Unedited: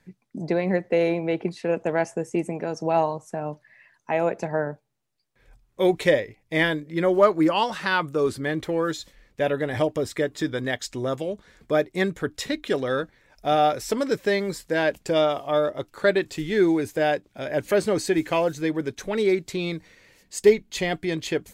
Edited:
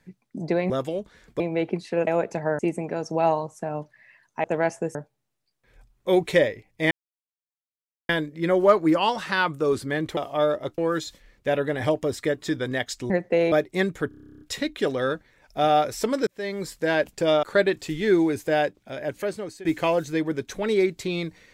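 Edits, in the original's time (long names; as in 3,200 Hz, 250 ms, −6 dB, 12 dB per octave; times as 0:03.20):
0:00.70–0:01.12: swap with 0:11.03–0:11.73
0:01.79–0:02.30: swap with 0:04.15–0:04.67
0:06.63: splice in silence 1.18 s
0:12.29: stutter 0.03 s, 12 plays
0:14.15–0:14.60: fade in
0:15.31–0:15.92: move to 0:08.71
0:17.12–0:18.14: fade out, to −19.5 dB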